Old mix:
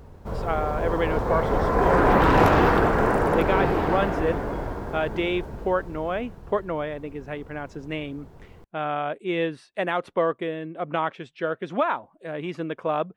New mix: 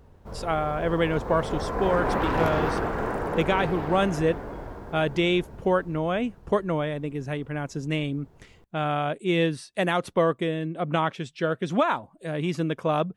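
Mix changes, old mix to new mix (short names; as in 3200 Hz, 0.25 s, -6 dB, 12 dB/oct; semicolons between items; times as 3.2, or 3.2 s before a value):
speech: add tone controls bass +10 dB, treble +15 dB; background -7.5 dB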